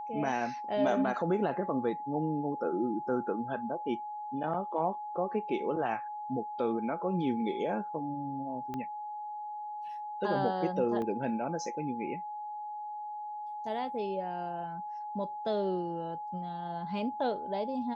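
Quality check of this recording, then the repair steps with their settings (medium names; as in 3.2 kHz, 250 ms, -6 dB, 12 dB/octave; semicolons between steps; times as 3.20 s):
whine 840 Hz -37 dBFS
8.74 s: pop -25 dBFS
11.02 s: dropout 2.3 ms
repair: de-click; band-stop 840 Hz, Q 30; interpolate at 11.02 s, 2.3 ms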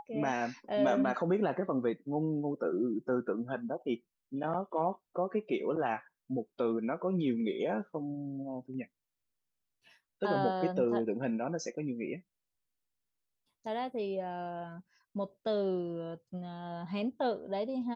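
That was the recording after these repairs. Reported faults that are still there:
8.74 s: pop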